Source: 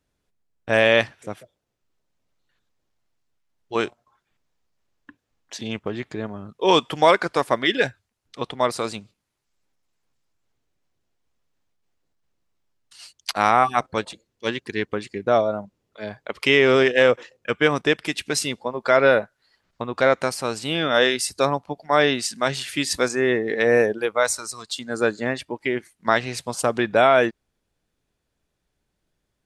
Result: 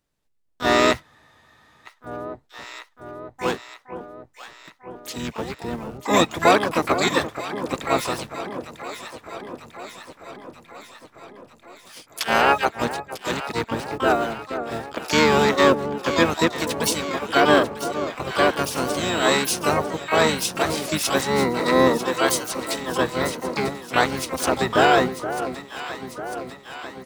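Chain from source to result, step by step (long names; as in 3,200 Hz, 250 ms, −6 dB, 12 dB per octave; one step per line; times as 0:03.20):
dynamic equaliser 2,600 Hz, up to −6 dB, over −41 dBFS, Q 3.8
wrong playback speed 44.1 kHz file played as 48 kHz
in parallel at −11 dB: bit-depth reduction 6 bits, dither none
on the sum: high-shelf EQ 5,100 Hz +3.5 dB
on a send: delay that swaps between a low-pass and a high-pass 473 ms, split 1,000 Hz, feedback 79%, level −10 dB
on the sum: pitch-shifted copies added −12 semitones −6 dB, −7 semitones −5 dB, +12 semitones −5 dB
frozen spectrum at 0:01.05, 0.83 s
level −5 dB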